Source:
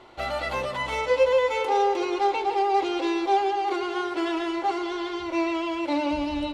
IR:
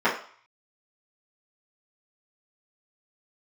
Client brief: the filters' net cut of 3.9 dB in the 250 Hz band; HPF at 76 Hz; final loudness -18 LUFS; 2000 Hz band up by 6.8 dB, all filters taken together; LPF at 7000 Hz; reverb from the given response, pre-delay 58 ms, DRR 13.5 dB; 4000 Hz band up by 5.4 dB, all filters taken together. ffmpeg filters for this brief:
-filter_complex "[0:a]highpass=76,lowpass=7k,equalizer=f=250:t=o:g=-6.5,equalizer=f=2k:t=o:g=7,equalizer=f=4k:t=o:g=4.5,asplit=2[a][b];[1:a]atrim=start_sample=2205,adelay=58[c];[b][c]afir=irnorm=-1:irlink=0,volume=-31dB[d];[a][d]amix=inputs=2:normalize=0,volume=6dB"

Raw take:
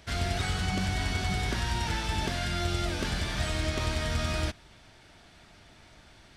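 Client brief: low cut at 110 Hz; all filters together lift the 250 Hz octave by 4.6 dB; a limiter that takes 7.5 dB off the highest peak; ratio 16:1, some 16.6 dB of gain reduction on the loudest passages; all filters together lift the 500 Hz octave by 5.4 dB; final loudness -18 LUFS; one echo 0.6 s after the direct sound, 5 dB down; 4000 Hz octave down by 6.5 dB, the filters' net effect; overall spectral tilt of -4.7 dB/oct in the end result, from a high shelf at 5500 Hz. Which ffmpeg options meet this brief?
-af "highpass=110,equalizer=f=250:t=o:g=5,equalizer=f=500:t=o:g=6.5,equalizer=f=4k:t=o:g=-6.5,highshelf=f=5.5k:g=-5.5,acompressor=threshold=-41dB:ratio=16,alimiter=level_in=14dB:limit=-24dB:level=0:latency=1,volume=-14dB,aecho=1:1:600:0.562,volume=29dB"

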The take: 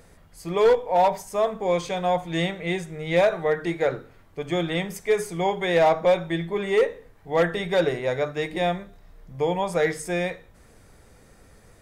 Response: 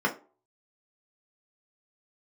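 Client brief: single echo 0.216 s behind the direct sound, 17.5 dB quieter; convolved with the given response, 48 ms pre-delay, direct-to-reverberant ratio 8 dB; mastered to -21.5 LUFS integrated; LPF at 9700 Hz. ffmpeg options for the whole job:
-filter_complex "[0:a]lowpass=9.7k,aecho=1:1:216:0.133,asplit=2[a][b];[1:a]atrim=start_sample=2205,adelay=48[c];[b][c]afir=irnorm=-1:irlink=0,volume=-20dB[d];[a][d]amix=inputs=2:normalize=0,volume=2dB"

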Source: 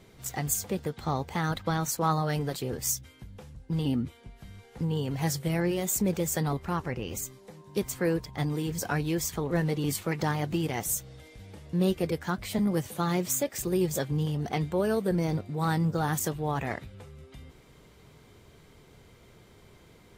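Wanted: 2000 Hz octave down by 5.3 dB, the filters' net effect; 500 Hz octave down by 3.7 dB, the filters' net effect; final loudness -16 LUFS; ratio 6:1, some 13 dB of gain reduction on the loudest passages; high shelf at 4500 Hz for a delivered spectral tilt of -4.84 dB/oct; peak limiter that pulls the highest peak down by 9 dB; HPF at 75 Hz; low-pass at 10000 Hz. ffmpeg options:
-af "highpass=75,lowpass=10k,equalizer=f=500:t=o:g=-4.5,equalizer=f=2k:t=o:g=-8,highshelf=f=4.5k:g=7.5,acompressor=threshold=-36dB:ratio=6,volume=25.5dB,alimiter=limit=-5dB:level=0:latency=1"

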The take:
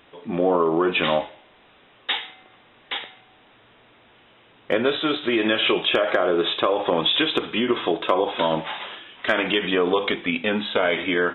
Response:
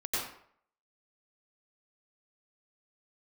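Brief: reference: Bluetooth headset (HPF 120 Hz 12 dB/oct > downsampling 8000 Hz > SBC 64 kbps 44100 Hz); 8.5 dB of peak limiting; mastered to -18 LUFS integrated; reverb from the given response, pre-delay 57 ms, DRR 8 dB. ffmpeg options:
-filter_complex "[0:a]alimiter=limit=-15dB:level=0:latency=1,asplit=2[a][b];[1:a]atrim=start_sample=2205,adelay=57[c];[b][c]afir=irnorm=-1:irlink=0,volume=-14.5dB[d];[a][d]amix=inputs=2:normalize=0,highpass=120,aresample=8000,aresample=44100,volume=7dB" -ar 44100 -c:a sbc -b:a 64k

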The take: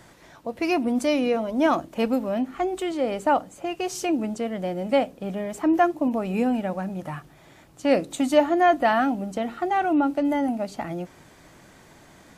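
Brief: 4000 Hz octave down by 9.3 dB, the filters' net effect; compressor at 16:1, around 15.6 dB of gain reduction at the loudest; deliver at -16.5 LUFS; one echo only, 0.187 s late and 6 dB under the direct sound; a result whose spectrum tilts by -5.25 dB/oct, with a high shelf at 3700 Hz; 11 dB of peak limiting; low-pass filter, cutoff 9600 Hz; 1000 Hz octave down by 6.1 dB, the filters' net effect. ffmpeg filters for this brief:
-af "lowpass=9.6k,equalizer=f=1k:t=o:g=-9,highshelf=f=3.7k:g=-7,equalizer=f=4k:t=o:g=-9,acompressor=threshold=-31dB:ratio=16,alimiter=level_in=8dB:limit=-24dB:level=0:latency=1,volume=-8dB,aecho=1:1:187:0.501,volume=22dB"

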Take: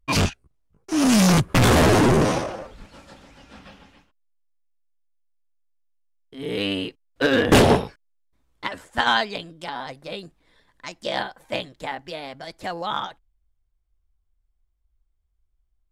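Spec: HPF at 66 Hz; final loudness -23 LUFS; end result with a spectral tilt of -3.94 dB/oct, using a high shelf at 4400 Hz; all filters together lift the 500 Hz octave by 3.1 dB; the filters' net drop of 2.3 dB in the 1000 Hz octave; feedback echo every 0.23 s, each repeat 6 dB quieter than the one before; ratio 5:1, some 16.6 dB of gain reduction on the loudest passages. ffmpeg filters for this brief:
-af "highpass=66,equalizer=f=500:t=o:g=5,equalizer=f=1k:t=o:g=-5.5,highshelf=f=4.4k:g=7.5,acompressor=threshold=-28dB:ratio=5,aecho=1:1:230|460|690|920|1150|1380:0.501|0.251|0.125|0.0626|0.0313|0.0157,volume=8.5dB"

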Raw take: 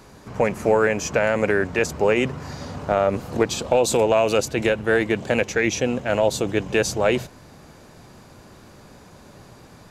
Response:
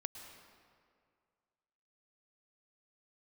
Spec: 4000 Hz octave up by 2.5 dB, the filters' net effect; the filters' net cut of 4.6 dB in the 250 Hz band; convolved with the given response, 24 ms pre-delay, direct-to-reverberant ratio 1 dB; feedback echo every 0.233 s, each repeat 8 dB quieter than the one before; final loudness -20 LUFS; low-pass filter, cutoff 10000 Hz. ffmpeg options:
-filter_complex "[0:a]lowpass=10k,equalizer=f=250:t=o:g=-6.5,equalizer=f=4k:t=o:g=3.5,aecho=1:1:233|466|699|932|1165:0.398|0.159|0.0637|0.0255|0.0102,asplit=2[a][b];[1:a]atrim=start_sample=2205,adelay=24[c];[b][c]afir=irnorm=-1:irlink=0,volume=1dB[d];[a][d]amix=inputs=2:normalize=0,volume=-1dB"

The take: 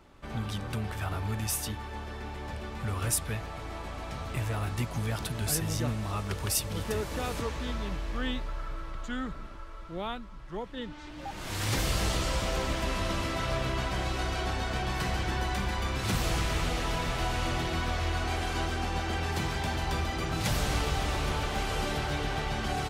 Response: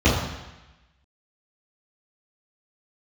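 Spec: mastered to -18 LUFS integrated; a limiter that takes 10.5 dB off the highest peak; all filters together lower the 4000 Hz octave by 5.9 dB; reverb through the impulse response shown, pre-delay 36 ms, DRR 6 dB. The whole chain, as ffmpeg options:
-filter_complex "[0:a]equalizer=f=4k:t=o:g=-8,alimiter=level_in=3dB:limit=-24dB:level=0:latency=1,volume=-3dB,asplit=2[a][b];[1:a]atrim=start_sample=2205,adelay=36[c];[b][c]afir=irnorm=-1:irlink=0,volume=-26.5dB[d];[a][d]amix=inputs=2:normalize=0,volume=12dB"

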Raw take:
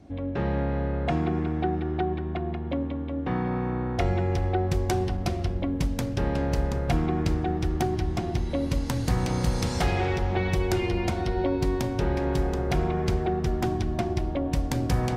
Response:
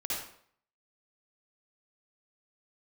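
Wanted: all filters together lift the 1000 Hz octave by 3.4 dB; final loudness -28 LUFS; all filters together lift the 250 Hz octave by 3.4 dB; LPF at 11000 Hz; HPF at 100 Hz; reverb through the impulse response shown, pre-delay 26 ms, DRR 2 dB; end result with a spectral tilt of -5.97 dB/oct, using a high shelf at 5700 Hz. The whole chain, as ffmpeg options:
-filter_complex "[0:a]highpass=100,lowpass=11k,equalizer=f=250:t=o:g=4.5,equalizer=f=1k:t=o:g=4.5,highshelf=f=5.7k:g=9,asplit=2[a][b];[1:a]atrim=start_sample=2205,adelay=26[c];[b][c]afir=irnorm=-1:irlink=0,volume=-6.5dB[d];[a][d]amix=inputs=2:normalize=0,volume=-4.5dB"

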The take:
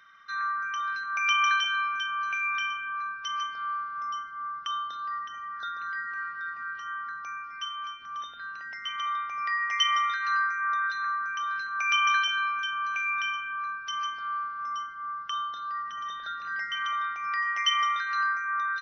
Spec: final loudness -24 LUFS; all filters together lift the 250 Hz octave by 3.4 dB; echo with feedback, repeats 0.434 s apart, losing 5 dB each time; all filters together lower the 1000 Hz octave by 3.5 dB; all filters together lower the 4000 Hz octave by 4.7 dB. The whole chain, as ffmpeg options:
-af "equalizer=f=250:t=o:g=4.5,equalizer=f=1k:t=o:g=-4,equalizer=f=4k:t=o:g=-7,aecho=1:1:434|868|1302|1736|2170|2604|3038:0.562|0.315|0.176|0.0988|0.0553|0.031|0.0173,volume=7dB"

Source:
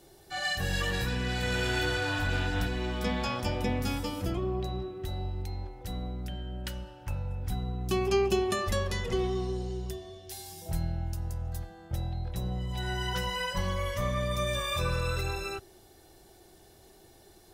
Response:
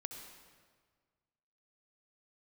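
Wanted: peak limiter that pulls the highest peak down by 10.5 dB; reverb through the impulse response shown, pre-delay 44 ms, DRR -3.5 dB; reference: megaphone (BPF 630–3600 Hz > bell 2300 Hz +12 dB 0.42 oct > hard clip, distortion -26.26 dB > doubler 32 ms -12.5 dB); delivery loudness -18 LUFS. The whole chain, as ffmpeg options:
-filter_complex "[0:a]alimiter=level_in=1.5dB:limit=-24dB:level=0:latency=1,volume=-1.5dB,asplit=2[a][b];[1:a]atrim=start_sample=2205,adelay=44[c];[b][c]afir=irnorm=-1:irlink=0,volume=6dB[d];[a][d]amix=inputs=2:normalize=0,highpass=630,lowpass=3.6k,equalizer=f=2.3k:t=o:w=0.42:g=12,asoftclip=type=hard:threshold=-21.5dB,asplit=2[e][f];[f]adelay=32,volume=-12.5dB[g];[e][g]amix=inputs=2:normalize=0,volume=12.5dB"

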